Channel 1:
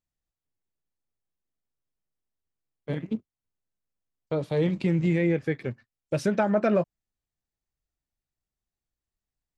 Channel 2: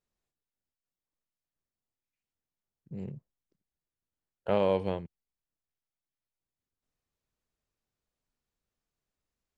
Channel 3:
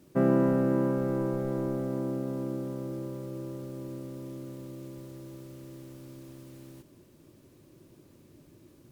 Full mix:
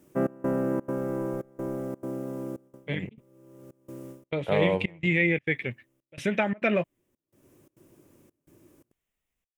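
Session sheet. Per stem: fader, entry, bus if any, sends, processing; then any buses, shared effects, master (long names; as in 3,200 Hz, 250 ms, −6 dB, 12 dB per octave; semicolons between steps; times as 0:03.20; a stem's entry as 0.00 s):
−2.5 dB, 0.00 s, no send, flat-topped bell 2,700 Hz +15.5 dB 1.3 octaves
+0.5 dB, 0.00 s, no send, high-shelf EQ 7,900 Hz +7.5 dB
+0.5 dB, 0.00 s, no send, bass and treble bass −5 dB, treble +2 dB; automatic ducking −24 dB, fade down 0.20 s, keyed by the first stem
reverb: not used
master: parametric band 4,200 Hz −11 dB 0.59 octaves; gate pattern "xxx..xxxx.xxx" 170 BPM −24 dB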